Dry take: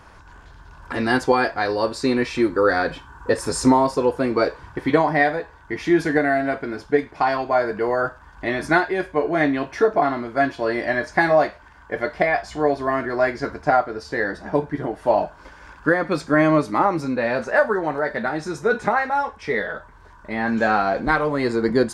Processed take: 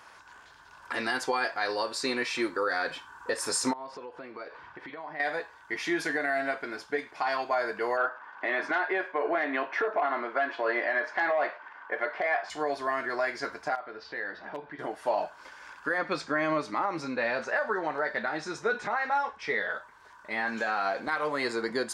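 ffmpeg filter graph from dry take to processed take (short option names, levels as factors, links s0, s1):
-filter_complex "[0:a]asettb=1/sr,asplit=3[s0][s1][s2];[s0]atrim=end=3.734[s3];[s1]atrim=start=3.73:end=5.2,asetpts=PTS-STARTPTS,afade=t=in:d=0.004:c=qsin,afade=t=out:st=1.466:d=0.004:c=qsin,lowpass=3200,acompressor=threshold=0.0316:ratio=10:attack=3.2:release=140:knee=1:detection=peak[s4];[s2]atrim=start=5.196[s5];[s3][s4]acrossfade=d=0.004:c1=hsin:c2=qsin[s6];[s6][s5]acrossfade=d=0.004:c1=qsin:c2=hsin,asettb=1/sr,asplit=3[s7][s8][s9];[s7]atrim=end=7.974[s10];[s8]atrim=start=7.97:end=12.5,asetpts=PTS-STARTPTS,afade=t=in:d=0.004:c=qsin,afade=t=out:st=4.526:d=0.004:c=qsin,highpass=320,lowpass=2100,acontrast=63[s11];[s9]atrim=start=12.496[s12];[s10][s11]acrossfade=d=0.004:c1=hsin:c2=qsin[s13];[s13][s12]acrossfade=d=0.004:c1=qsin:c2=hsin,asettb=1/sr,asplit=3[s14][s15][s16];[s14]atrim=end=13.754[s17];[s15]atrim=start=13.75:end=14.79,asetpts=PTS-STARTPTS,afade=t=in:d=0.004:c=qsin,afade=t=out:st=1.036:d=0.004:c=qsin,lowpass=f=4000:w=0.5412,lowpass=f=4000:w=1.3066,acompressor=threshold=0.0251:ratio=2:attack=3.2:release=140:knee=1:detection=peak,aeval=exprs='0.119*(abs(mod(val(0)/0.119+3,4)-2)-1)':c=same[s18];[s16]atrim=start=14.786[s19];[s17][s18]acrossfade=d=0.004:c1=hsin:c2=qsin[s20];[s20][s19]acrossfade=d=0.004:c1=qsin:c2=hsin,asettb=1/sr,asplit=3[s21][s22][s23];[s21]atrim=end=15.984[s24];[s22]atrim=start=15.98:end=19.71,asetpts=PTS-STARTPTS,afade=t=in:d=0.004:c=qsin,afade=t=out:st=3.726:d=0.004:c=qsin,lowpass=5900,lowshelf=f=210:g=6.5[s25];[s23]atrim=start=19.706[s26];[s24][s25]acrossfade=d=0.004:c1=hsin:c2=qsin[s27];[s27][s26]acrossfade=d=0.004:c1=qsin:c2=hsin,highpass=f=1200:p=1,alimiter=limit=0.119:level=0:latency=1:release=103"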